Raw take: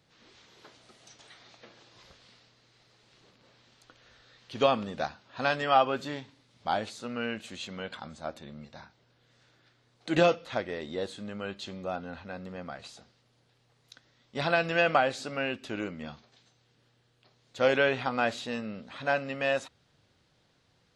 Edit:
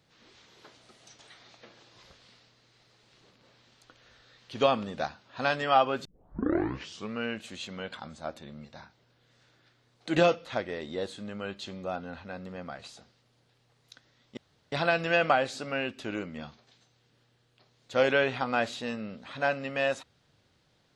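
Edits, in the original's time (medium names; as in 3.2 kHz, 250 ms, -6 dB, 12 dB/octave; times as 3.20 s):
6.05 s: tape start 1.14 s
14.37 s: insert room tone 0.35 s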